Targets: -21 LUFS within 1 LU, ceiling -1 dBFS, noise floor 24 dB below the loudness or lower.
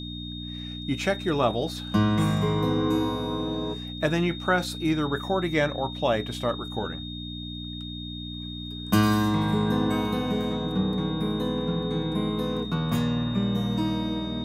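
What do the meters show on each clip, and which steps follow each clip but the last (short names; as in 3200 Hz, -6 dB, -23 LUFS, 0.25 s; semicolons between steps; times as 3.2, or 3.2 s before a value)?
hum 60 Hz; harmonics up to 300 Hz; hum level -34 dBFS; steady tone 3700 Hz; tone level -38 dBFS; loudness -27.0 LUFS; peak -9.0 dBFS; loudness target -21.0 LUFS
-> de-hum 60 Hz, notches 5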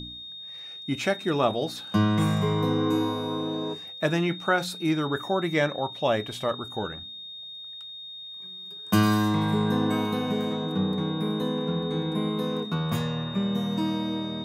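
hum none; steady tone 3700 Hz; tone level -38 dBFS
-> notch 3700 Hz, Q 30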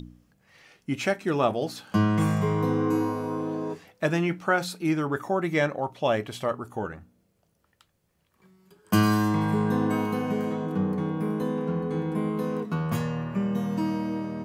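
steady tone none; loudness -27.0 LUFS; peak -9.5 dBFS; loudness target -21.0 LUFS
-> gain +6 dB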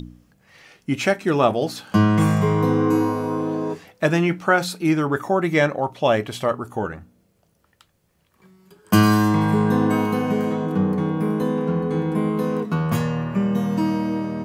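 loudness -21.0 LUFS; peak -3.5 dBFS; noise floor -64 dBFS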